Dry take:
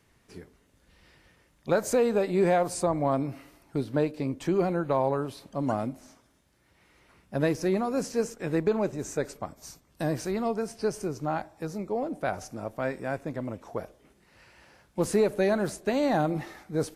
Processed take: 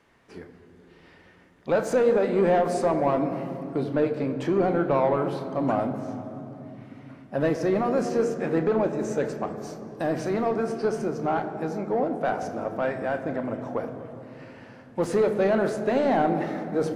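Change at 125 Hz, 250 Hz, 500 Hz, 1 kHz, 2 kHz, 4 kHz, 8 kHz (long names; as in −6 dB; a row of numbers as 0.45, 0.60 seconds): +0.5, +3.0, +4.0, +4.5, +3.0, −1.0, −5.5 decibels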